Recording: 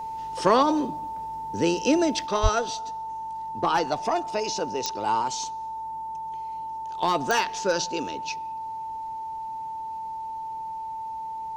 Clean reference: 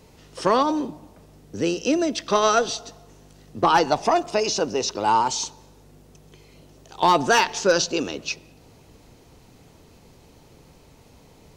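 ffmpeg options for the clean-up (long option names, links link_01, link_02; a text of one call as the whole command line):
ffmpeg -i in.wav -filter_complex "[0:a]adeclick=threshold=4,bandreject=frequency=890:width=30,asplit=3[link_01][link_02][link_03];[link_01]afade=type=out:start_time=2.42:duration=0.02[link_04];[link_02]highpass=frequency=140:width=0.5412,highpass=frequency=140:width=1.3066,afade=type=in:start_time=2.42:duration=0.02,afade=type=out:start_time=2.54:duration=0.02[link_05];[link_03]afade=type=in:start_time=2.54:duration=0.02[link_06];[link_04][link_05][link_06]amix=inputs=3:normalize=0,asetnsamples=nb_out_samples=441:pad=0,asendcmd='2.26 volume volume 6dB',volume=0dB" out.wav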